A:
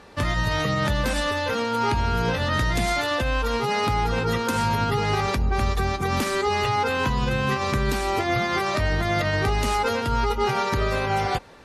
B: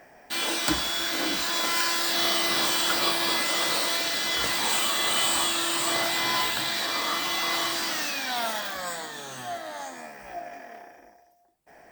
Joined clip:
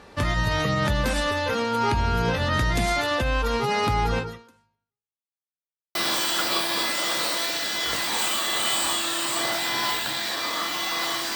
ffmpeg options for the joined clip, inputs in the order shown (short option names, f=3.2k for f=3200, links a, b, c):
-filter_complex "[0:a]apad=whole_dur=11.35,atrim=end=11.35,asplit=2[a][b];[a]atrim=end=5.22,asetpts=PTS-STARTPTS,afade=t=out:st=4.17:d=1.05:c=exp[c];[b]atrim=start=5.22:end=5.95,asetpts=PTS-STARTPTS,volume=0[d];[1:a]atrim=start=2.46:end=7.86,asetpts=PTS-STARTPTS,afade=t=in:d=0.004:c=hsin[e];[c][d][e]concat=n=3:v=0:a=1"